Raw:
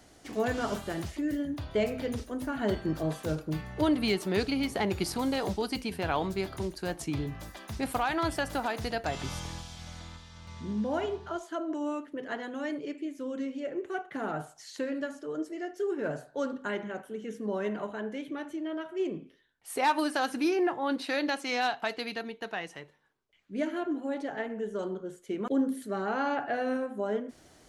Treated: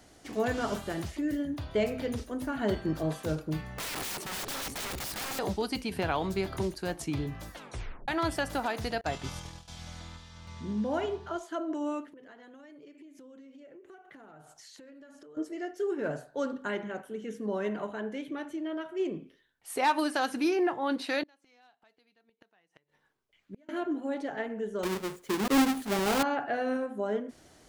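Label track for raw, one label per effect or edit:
3.740000	5.390000	wrapped overs gain 31.5 dB
5.960000	6.740000	three-band squash depth 70%
7.510000	7.510000	tape stop 0.57 s
9.010000	9.680000	expander -34 dBFS
12.070000	15.370000	compressor 16:1, threshold -48 dBFS
21.230000	23.690000	flipped gate shuts at -31 dBFS, range -33 dB
24.830000	26.230000	half-waves squared off

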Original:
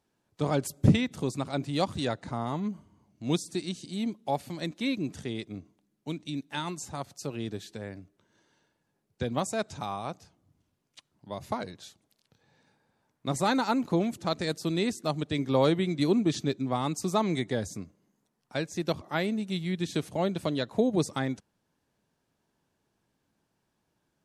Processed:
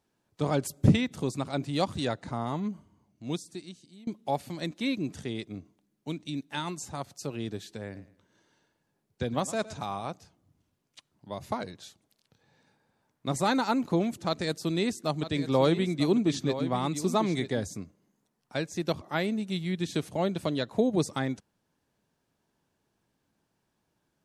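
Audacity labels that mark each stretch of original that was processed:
2.600000	4.070000	fade out, to -23 dB
7.830000	10.090000	warbling echo 0.111 s, feedback 32%, depth 81 cents, level -16.5 dB
14.280000	17.640000	echo 0.946 s -11.5 dB

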